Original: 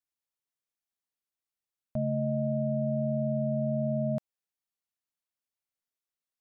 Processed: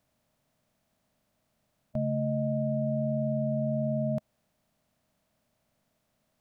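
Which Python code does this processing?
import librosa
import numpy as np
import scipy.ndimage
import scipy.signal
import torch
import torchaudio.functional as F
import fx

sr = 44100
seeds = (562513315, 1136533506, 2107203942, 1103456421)

y = fx.bin_compress(x, sr, power=0.6)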